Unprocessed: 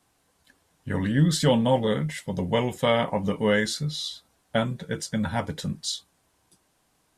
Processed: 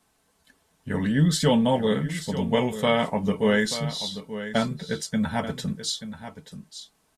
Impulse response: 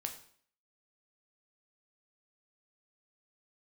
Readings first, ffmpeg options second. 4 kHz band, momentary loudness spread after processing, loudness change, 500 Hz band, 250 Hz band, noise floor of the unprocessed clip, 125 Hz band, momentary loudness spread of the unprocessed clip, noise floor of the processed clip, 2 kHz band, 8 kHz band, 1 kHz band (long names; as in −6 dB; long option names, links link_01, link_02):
+1.0 dB, 20 LU, +0.5 dB, +0.5 dB, +2.0 dB, −69 dBFS, −0.5 dB, 11 LU, −68 dBFS, +1.0 dB, +1.0 dB, +0.5 dB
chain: -af "aecho=1:1:4.6:0.37,aecho=1:1:883:0.251"